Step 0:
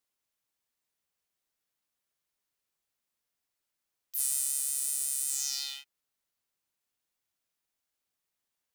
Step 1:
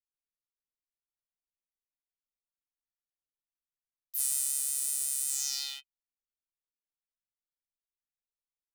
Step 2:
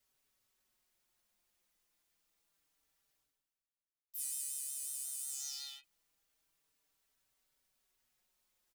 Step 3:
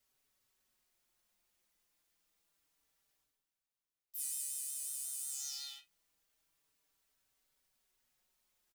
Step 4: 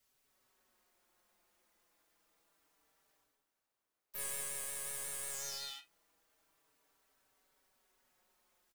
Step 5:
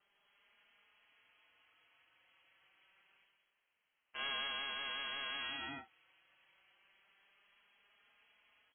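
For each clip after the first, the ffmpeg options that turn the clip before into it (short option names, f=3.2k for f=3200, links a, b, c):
-af "anlmdn=0.0251"
-filter_complex "[0:a]areverse,acompressor=mode=upward:threshold=-48dB:ratio=2.5,areverse,asplit=2[a][b];[b]adelay=4.8,afreqshift=-0.27[c];[a][c]amix=inputs=2:normalize=1,volume=-7dB"
-filter_complex "[0:a]asplit=2[a][b];[b]adelay=40,volume=-11dB[c];[a][c]amix=inputs=2:normalize=0"
-filter_complex "[0:a]acrossover=split=240|1700|2600[a][b][c][d];[b]dynaudnorm=f=210:g=3:m=9.5dB[e];[d]aeval=exprs='clip(val(0),-1,0.00398)':c=same[f];[a][e][c][f]amix=inputs=4:normalize=0,volume=2dB"
-af "lowpass=f=2.8k:t=q:w=0.5098,lowpass=f=2.8k:t=q:w=0.6013,lowpass=f=2.8k:t=q:w=0.9,lowpass=f=2.8k:t=q:w=2.563,afreqshift=-3300,volume=8.5dB"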